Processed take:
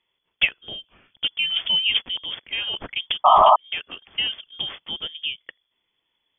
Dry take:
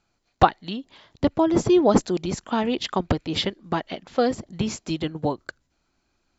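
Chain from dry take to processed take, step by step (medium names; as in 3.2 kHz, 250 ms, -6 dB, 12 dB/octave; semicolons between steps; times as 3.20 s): careless resampling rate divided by 6×, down none, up zero stuff; frequency inversion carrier 3.4 kHz; painted sound noise, 3.24–3.56 s, 590–1300 Hz -8 dBFS; trim -4.5 dB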